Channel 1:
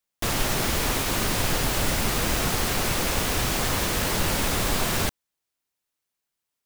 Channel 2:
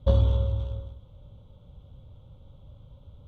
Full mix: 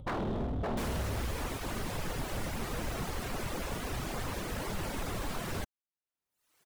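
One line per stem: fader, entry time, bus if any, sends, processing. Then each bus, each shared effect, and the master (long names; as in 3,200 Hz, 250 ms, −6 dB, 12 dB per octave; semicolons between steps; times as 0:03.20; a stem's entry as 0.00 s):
−7.0 dB, 0.55 s, no send, no echo send, reverb reduction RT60 0.77 s; parametric band 10,000 Hz +3.5 dB 1.4 octaves
−1.5 dB, 0.00 s, no send, echo send −4 dB, no processing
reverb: not used
echo: single-tap delay 564 ms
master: high-shelf EQ 2,700 Hz −12 dB; upward compression, threshold −44 dBFS; wave folding −28.5 dBFS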